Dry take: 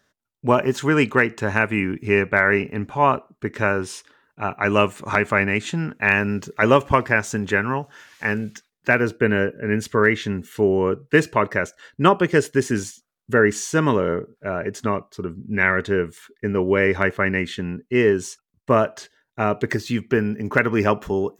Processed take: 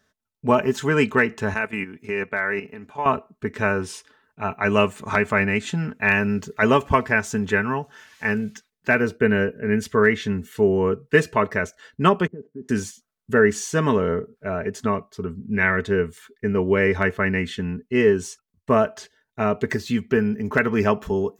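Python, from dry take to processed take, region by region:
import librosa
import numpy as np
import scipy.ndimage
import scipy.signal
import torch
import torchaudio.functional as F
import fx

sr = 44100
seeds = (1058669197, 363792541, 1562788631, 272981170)

y = fx.chain(x, sr, fx.level_steps(step_db=11),
    fx.highpass(hz=330.0, slope=6), at=(1.54, 3.06))
y = fx.chain(y, sr, fx.level_steps(step_db=12),
    fx.ladder_bandpass(hz=270.0, resonance_pct=30),
    fx.low_shelf(hz=290.0, db=7.5), at=(12.27, 12.69))
y = fx.peak_eq(y, sr, hz=88.0, db=9.0, octaves=0.81)
y = y + 0.51 * np.pad(y, (int(4.6 * sr / 1000.0), 0))[:len(y)]
y = y * librosa.db_to_amplitude(-2.5)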